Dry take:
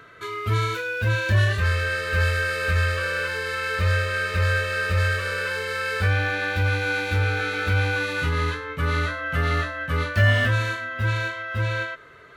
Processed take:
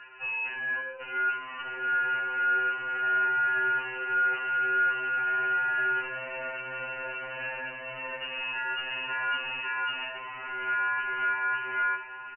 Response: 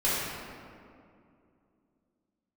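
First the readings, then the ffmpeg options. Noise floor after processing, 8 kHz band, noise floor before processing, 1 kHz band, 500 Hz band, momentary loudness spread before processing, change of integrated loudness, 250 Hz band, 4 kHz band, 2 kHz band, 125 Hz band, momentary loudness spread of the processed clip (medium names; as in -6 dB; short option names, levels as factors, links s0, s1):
-41 dBFS, under -40 dB, -40 dBFS, +2.0 dB, -13.0 dB, 6 LU, -5.0 dB, under -10 dB, -8.0 dB, -3.5 dB, under -35 dB, 10 LU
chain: -filter_complex "[0:a]alimiter=limit=0.15:level=0:latency=1:release=298,asoftclip=type=hard:threshold=0.0299,lowpass=f=2600:t=q:w=0.5098,lowpass=f=2600:t=q:w=0.6013,lowpass=f=2600:t=q:w=0.9,lowpass=f=2600:t=q:w=2.563,afreqshift=-3000,asplit=2[s0][s1];[s1]adelay=1283,volume=0.355,highshelf=f=4000:g=-28.9[s2];[s0][s2]amix=inputs=2:normalize=0,asplit=2[s3][s4];[1:a]atrim=start_sample=2205,afade=t=out:st=0.22:d=0.01,atrim=end_sample=10143[s5];[s4][s5]afir=irnorm=-1:irlink=0,volume=0.133[s6];[s3][s6]amix=inputs=2:normalize=0,afftfilt=real='re*2.45*eq(mod(b,6),0)':imag='im*2.45*eq(mod(b,6),0)':win_size=2048:overlap=0.75"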